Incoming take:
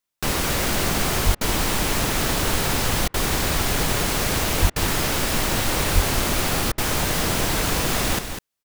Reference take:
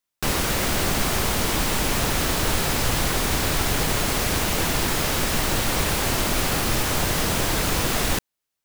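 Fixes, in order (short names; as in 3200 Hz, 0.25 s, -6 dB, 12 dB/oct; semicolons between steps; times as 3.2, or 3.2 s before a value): 1.25–1.37 HPF 140 Hz 24 dB/oct; 4.61–4.73 HPF 140 Hz 24 dB/oct; 5.94–6.06 HPF 140 Hz 24 dB/oct; interpolate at 1.35/3.08/4.7/6.72, 59 ms; inverse comb 0.2 s -8.5 dB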